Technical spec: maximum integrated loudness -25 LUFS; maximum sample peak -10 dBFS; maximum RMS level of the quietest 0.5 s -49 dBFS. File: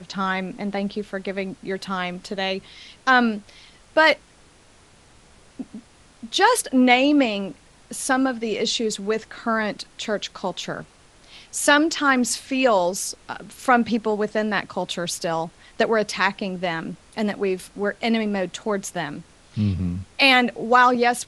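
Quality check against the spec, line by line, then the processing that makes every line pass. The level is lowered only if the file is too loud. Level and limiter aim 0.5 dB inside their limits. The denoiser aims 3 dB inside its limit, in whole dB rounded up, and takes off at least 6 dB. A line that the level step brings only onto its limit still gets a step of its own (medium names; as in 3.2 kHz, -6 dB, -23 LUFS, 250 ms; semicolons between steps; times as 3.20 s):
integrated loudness -22.0 LUFS: fail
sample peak -3.0 dBFS: fail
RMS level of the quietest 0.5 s -53 dBFS: pass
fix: trim -3.5 dB; peak limiter -10.5 dBFS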